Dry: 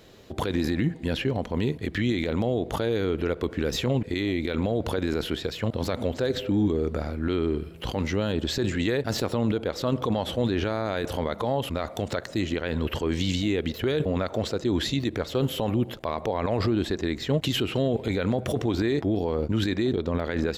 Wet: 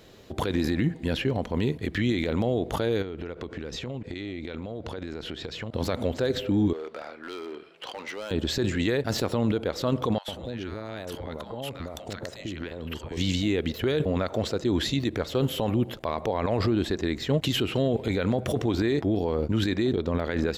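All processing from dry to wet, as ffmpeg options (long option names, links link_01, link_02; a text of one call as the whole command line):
ffmpeg -i in.wav -filter_complex "[0:a]asettb=1/sr,asplit=3[link_01][link_02][link_03];[link_01]atrim=end=3.024[link_04];[link_02]atrim=start=3.02:end=5.74,asetpts=PTS-STARTPTS,afade=type=in:duration=0.004:curve=qsin,afade=type=out:start_time=2.716:duration=0.004:curve=qsin,acompressor=threshold=-31dB:ratio=6:attack=3.2:release=140:knee=1:detection=peak,lowpass=7000[link_05];[link_03]atrim=start=5.736[link_06];[link_04][link_05]acrossfade=duration=0.004:curve1=hsin:curve2=qsin[link_07];[link_07][link_06]acrossfade=duration=0.004:curve1=qsin:curve2=hsin,asettb=1/sr,asplit=3[link_08][link_09][link_10];[link_08]atrim=end=6.734[link_11];[link_09]atrim=start=6.73:end=8.31,asetpts=PTS-STARTPTS,afade=type=in:duration=0.004:curve=qsin,afade=type=out:start_time=1.576:duration=0.004:curve=qsin,highpass=650,lowpass=4700,asoftclip=type=hard:threshold=-31dB[link_12];[link_10]atrim=start=8.306[link_13];[link_11][link_12]acrossfade=duration=0.004:curve1=hsin:curve2=qsin[link_14];[link_14][link_13]acrossfade=duration=0.004:curve1=qsin:curve2=hsin,asettb=1/sr,asplit=3[link_15][link_16][link_17];[link_15]atrim=end=10.184[link_18];[link_16]atrim=start=10.18:end=13.17,asetpts=PTS-STARTPTS,afade=type=in:duration=0.004:curve=qsin,afade=type=out:start_time=2.986:duration=0.004:curve=qsin,acompressor=threshold=-30dB:ratio=6:attack=3.2:release=140:knee=1:detection=peak,acrossover=split=950[link_19][link_20];[link_19]adelay=100[link_21];[link_21][link_20]amix=inputs=2:normalize=0,atrim=end_sample=131859[link_22];[link_17]atrim=start=13.166[link_23];[link_18][link_22]acrossfade=duration=0.004:curve1=hsin:curve2=qsin[link_24];[link_24][link_23]acrossfade=duration=0.004:curve1=qsin:curve2=hsin" out.wav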